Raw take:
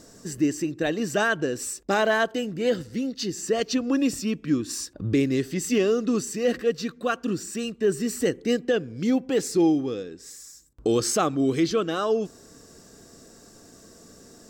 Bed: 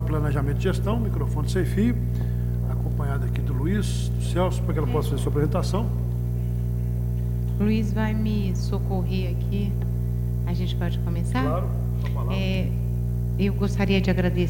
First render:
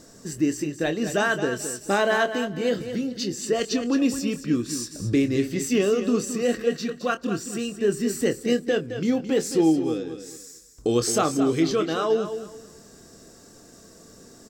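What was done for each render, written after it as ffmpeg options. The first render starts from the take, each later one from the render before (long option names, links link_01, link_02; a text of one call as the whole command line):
ffmpeg -i in.wav -filter_complex "[0:a]asplit=2[link_01][link_02];[link_02]adelay=25,volume=-10dB[link_03];[link_01][link_03]amix=inputs=2:normalize=0,asplit=2[link_04][link_05];[link_05]aecho=0:1:217|434|651:0.316|0.0791|0.0198[link_06];[link_04][link_06]amix=inputs=2:normalize=0" out.wav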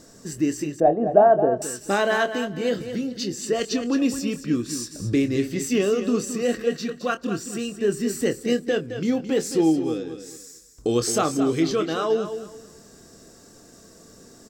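ffmpeg -i in.wav -filter_complex "[0:a]asettb=1/sr,asplit=3[link_01][link_02][link_03];[link_01]atrim=end=0.804[link_04];[link_02]atrim=start=0.8:end=1.62,asetpts=PTS-STARTPTS,afade=type=in:duration=0.004:curve=qsin,afade=type=out:start_time=0.816:duration=0.004:curve=qsin,lowpass=frequency=710:width_type=q:width=7.4[link_05];[link_03]atrim=start=1.616[link_06];[link_04][link_05]acrossfade=duration=0.004:curve1=hsin:curve2=qsin[link_07];[link_07][link_06]acrossfade=duration=0.004:curve1=qsin:curve2=hsin" out.wav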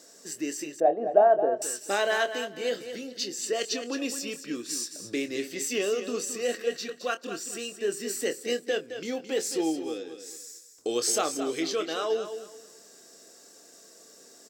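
ffmpeg -i in.wav -af "highpass=520,equalizer=frequency=1100:width_type=o:width=1.2:gain=-6.5" out.wav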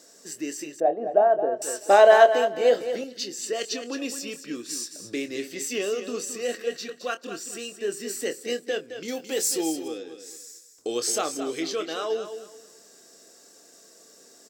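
ffmpeg -i in.wav -filter_complex "[0:a]asettb=1/sr,asplit=3[link_01][link_02][link_03];[link_01]atrim=end=1.674[link_04];[link_02]atrim=start=1.67:end=3.04,asetpts=PTS-STARTPTS,afade=type=in:duration=0.004:curve=qsin,afade=type=out:start_time=1.366:duration=0.004:curve=qsin,equalizer=frequency=690:width=0.86:gain=15[link_05];[link_03]atrim=start=3.036[link_06];[link_04][link_05]acrossfade=duration=0.004:curve1=hsin:curve2=qsin[link_07];[link_07][link_06]acrossfade=duration=0.004:curve1=qsin:curve2=hsin,asettb=1/sr,asplit=3[link_08][link_09][link_10];[link_08]atrim=end=9.084[link_11];[link_09]atrim=start=9.08:end=9.88,asetpts=PTS-STARTPTS,afade=type=in:duration=0.004:curve=qsin,afade=type=out:start_time=0.796:duration=0.004:curve=qsin,aemphasis=mode=production:type=50kf[link_12];[link_10]atrim=start=9.876[link_13];[link_11][link_12]acrossfade=duration=0.004:curve1=hsin:curve2=qsin[link_14];[link_14][link_13]acrossfade=duration=0.004:curve1=qsin:curve2=hsin" out.wav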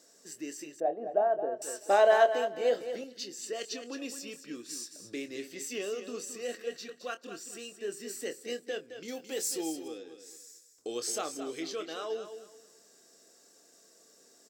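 ffmpeg -i in.wav -af "volume=-8dB" out.wav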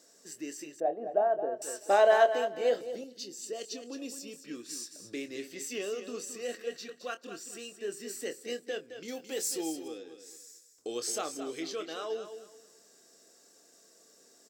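ffmpeg -i in.wav -filter_complex "[0:a]asettb=1/sr,asplit=3[link_01][link_02][link_03];[link_01]atrim=end=2.814[link_04];[link_02]atrim=start=2.81:end=4.45,asetpts=PTS-STARTPTS,afade=type=in:duration=0.004:curve=qsin,afade=type=out:start_time=1.636:duration=0.004:curve=qsin,equalizer=frequency=1700:width_type=o:width=1.7:gain=-9[link_05];[link_03]atrim=start=4.446[link_06];[link_04][link_05]acrossfade=duration=0.004:curve1=hsin:curve2=qsin[link_07];[link_07][link_06]acrossfade=duration=0.004:curve1=qsin:curve2=hsin" out.wav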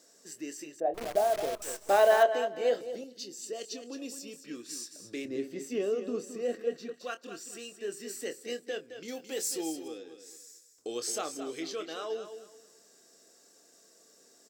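ffmpeg -i in.wav -filter_complex "[0:a]asettb=1/sr,asplit=3[link_01][link_02][link_03];[link_01]atrim=end=0.944[link_04];[link_02]atrim=start=0.94:end=2.23,asetpts=PTS-STARTPTS,afade=type=in:duration=0.004:curve=qsin,afade=type=out:start_time=1.286:duration=0.004:curve=qsin,acrusher=bits=7:dc=4:mix=0:aa=0.000001[link_05];[link_03]atrim=start=2.226[link_06];[link_04][link_05]acrossfade=duration=0.004:curve1=hsin:curve2=qsin[link_07];[link_07][link_06]acrossfade=duration=0.004:curve1=qsin:curve2=hsin,asettb=1/sr,asplit=3[link_08][link_09][link_10];[link_08]atrim=end=5.254[link_11];[link_09]atrim=start=5.25:end=6.94,asetpts=PTS-STARTPTS,afade=type=in:duration=0.004:curve=qsin,afade=type=out:start_time=1.686:duration=0.004:curve=qsin,tiltshelf=frequency=1100:gain=8[link_12];[link_10]atrim=start=6.936[link_13];[link_11][link_12]acrossfade=duration=0.004:curve1=hsin:curve2=qsin[link_14];[link_14][link_13]acrossfade=duration=0.004:curve1=qsin:curve2=hsin" out.wav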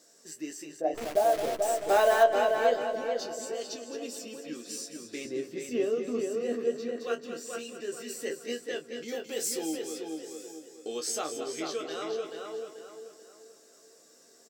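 ffmpeg -i in.wav -filter_complex "[0:a]asplit=2[link_01][link_02];[link_02]adelay=13,volume=-5.5dB[link_03];[link_01][link_03]amix=inputs=2:normalize=0,asplit=2[link_04][link_05];[link_05]adelay=436,lowpass=frequency=3400:poles=1,volume=-4dB,asplit=2[link_06][link_07];[link_07]adelay=436,lowpass=frequency=3400:poles=1,volume=0.38,asplit=2[link_08][link_09];[link_09]adelay=436,lowpass=frequency=3400:poles=1,volume=0.38,asplit=2[link_10][link_11];[link_11]adelay=436,lowpass=frequency=3400:poles=1,volume=0.38,asplit=2[link_12][link_13];[link_13]adelay=436,lowpass=frequency=3400:poles=1,volume=0.38[link_14];[link_04][link_06][link_08][link_10][link_12][link_14]amix=inputs=6:normalize=0" out.wav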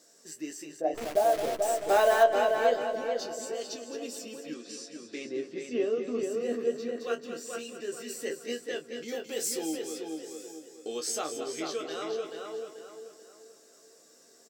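ffmpeg -i in.wav -filter_complex "[0:a]asettb=1/sr,asplit=3[link_01][link_02][link_03];[link_01]atrim=end=4.544[link_04];[link_02]atrim=start=4.54:end=6.23,asetpts=PTS-STARTPTS,afade=type=in:duration=0.004:curve=qsin,afade=type=out:start_time=1.686:duration=0.004:curve=qsin,highpass=170,lowpass=5500[link_05];[link_03]atrim=start=6.226[link_06];[link_04][link_05]acrossfade=duration=0.004:curve1=hsin:curve2=qsin[link_07];[link_07][link_06]acrossfade=duration=0.004:curve1=qsin:curve2=hsin" out.wav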